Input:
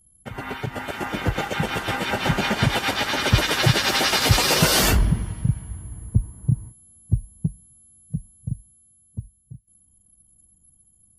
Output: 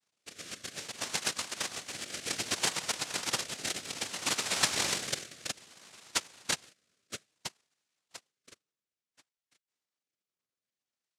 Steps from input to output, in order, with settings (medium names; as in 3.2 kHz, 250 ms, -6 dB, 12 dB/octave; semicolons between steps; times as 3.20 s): band-pass sweep 270 Hz -> 2.2 kHz, 6.93–9.63 s; noise-vocoded speech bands 1; rotary cabinet horn 0.6 Hz